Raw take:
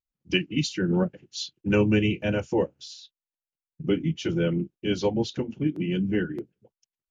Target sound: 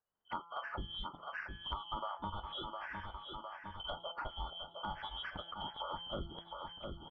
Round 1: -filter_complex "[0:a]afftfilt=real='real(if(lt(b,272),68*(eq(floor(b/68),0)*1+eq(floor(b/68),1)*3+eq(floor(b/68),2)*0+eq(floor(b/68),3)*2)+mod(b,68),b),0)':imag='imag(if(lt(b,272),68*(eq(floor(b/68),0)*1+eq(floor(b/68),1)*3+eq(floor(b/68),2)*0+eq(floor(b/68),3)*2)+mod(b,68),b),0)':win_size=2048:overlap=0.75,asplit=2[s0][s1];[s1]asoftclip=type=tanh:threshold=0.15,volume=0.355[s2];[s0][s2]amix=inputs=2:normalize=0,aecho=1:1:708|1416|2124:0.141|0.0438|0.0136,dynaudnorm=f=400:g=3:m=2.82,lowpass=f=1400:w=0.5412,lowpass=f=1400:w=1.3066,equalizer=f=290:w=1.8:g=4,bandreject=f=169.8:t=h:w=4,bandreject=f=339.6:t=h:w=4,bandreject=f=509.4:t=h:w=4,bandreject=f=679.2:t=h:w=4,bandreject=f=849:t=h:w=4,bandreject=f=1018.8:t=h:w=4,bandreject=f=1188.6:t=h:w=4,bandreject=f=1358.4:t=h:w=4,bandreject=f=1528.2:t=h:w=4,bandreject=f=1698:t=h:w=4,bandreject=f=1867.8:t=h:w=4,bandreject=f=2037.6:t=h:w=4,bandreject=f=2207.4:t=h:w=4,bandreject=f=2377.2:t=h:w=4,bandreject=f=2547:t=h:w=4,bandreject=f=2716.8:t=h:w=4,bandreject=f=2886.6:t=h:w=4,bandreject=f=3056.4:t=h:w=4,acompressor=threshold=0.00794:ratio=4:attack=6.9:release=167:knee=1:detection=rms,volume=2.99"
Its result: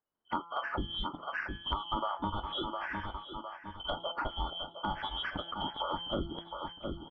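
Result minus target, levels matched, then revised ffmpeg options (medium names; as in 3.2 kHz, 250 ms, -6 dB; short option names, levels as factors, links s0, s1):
compression: peak gain reduction -6.5 dB; 250 Hz band +4.5 dB
-filter_complex "[0:a]afftfilt=real='real(if(lt(b,272),68*(eq(floor(b/68),0)*1+eq(floor(b/68),1)*3+eq(floor(b/68),2)*0+eq(floor(b/68),3)*2)+mod(b,68),b),0)':imag='imag(if(lt(b,272),68*(eq(floor(b/68),0)*1+eq(floor(b/68),1)*3+eq(floor(b/68),2)*0+eq(floor(b/68),3)*2)+mod(b,68),b),0)':win_size=2048:overlap=0.75,asplit=2[s0][s1];[s1]asoftclip=type=tanh:threshold=0.15,volume=0.355[s2];[s0][s2]amix=inputs=2:normalize=0,aecho=1:1:708|1416|2124:0.141|0.0438|0.0136,dynaudnorm=f=400:g=3:m=2.82,lowpass=f=1400:w=0.5412,lowpass=f=1400:w=1.3066,equalizer=f=290:w=1.8:g=-4.5,bandreject=f=169.8:t=h:w=4,bandreject=f=339.6:t=h:w=4,bandreject=f=509.4:t=h:w=4,bandreject=f=679.2:t=h:w=4,bandreject=f=849:t=h:w=4,bandreject=f=1018.8:t=h:w=4,bandreject=f=1188.6:t=h:w=4,bandreject=f=1358.4:t=h:w=4,bandreject=f=1528.2:t=h:w=4,bandreject=f=1698:t=h:w=4,bandreject=f=1867.8:t=h:w=4,bandreject=f=2037.6:t=h:w=4,bandreject=f=2207.4:t=h:w=4,bandreject=f=2377.2:t=h:w=4,bandreject=f=2547:t=h:w=4,bandreject=f=2716.8:t=h:w=4,bandreject=f=2886.6:t=h:w=4,bandreject=f=3056.4:t=h:w=4,acompressor=threshold=0.00282:ratio=4:attack=6.9:release=167:knee=1:detection=rms,volume=2.99"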